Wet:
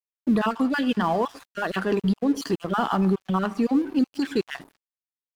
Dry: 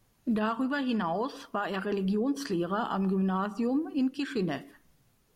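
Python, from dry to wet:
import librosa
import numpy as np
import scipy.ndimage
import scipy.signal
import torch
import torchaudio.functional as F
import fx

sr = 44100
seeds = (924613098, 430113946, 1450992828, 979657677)

y = fx.spec_dropout(x, sr, seeds[0], share_pct=26)
y = np.sign(y) * np.maximum(np.abs(y) - 10.0 ** (-49.5 / 20.0), 0.0)
y = y * 10.0 ** (8.0 / 20.0)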